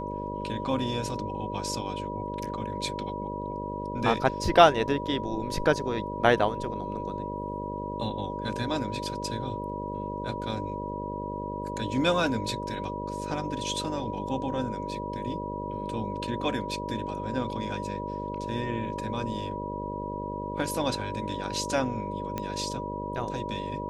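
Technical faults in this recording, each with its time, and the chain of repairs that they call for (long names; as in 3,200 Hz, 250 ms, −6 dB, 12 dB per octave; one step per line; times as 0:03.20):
mains buzz 50 Hz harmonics 12 −36 dBFS
whistle 970 Hz −35 dBFS
0:22.38: click −17 dBFS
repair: click removal
hum removal 50 Hz, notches 12
notch filter 970 Hz, Q 30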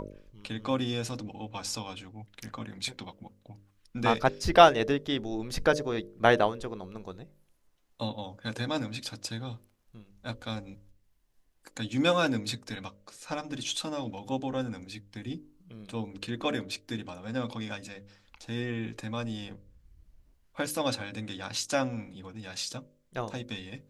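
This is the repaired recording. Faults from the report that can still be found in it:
none of them is left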